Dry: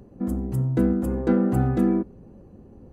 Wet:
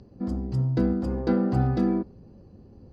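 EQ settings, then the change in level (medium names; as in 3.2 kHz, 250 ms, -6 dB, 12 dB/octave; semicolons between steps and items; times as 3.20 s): peaking EQ 98 Hz +5 dB 1.4 oct; dynamic bell 810 Hz, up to +4 dB, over -37 dBFS, Q 1.1; resonant low-pass 4.8 kHz, resonance Q 6.9; -4.5 dB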